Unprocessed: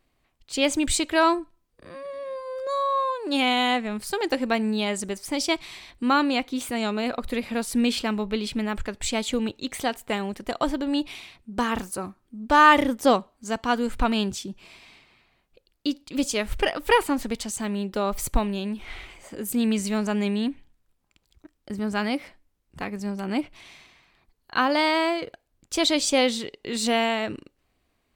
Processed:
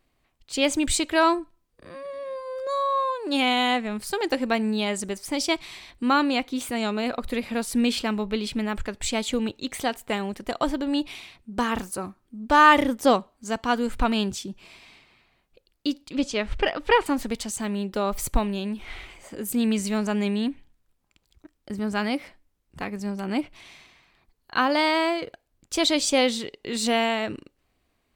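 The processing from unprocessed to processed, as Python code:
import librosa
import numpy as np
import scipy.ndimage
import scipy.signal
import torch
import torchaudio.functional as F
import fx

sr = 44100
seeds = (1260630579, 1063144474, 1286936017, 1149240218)

y = fx.lowpass(x, sr, hz=4600.0, slope=12, at=(16.13, 17.06))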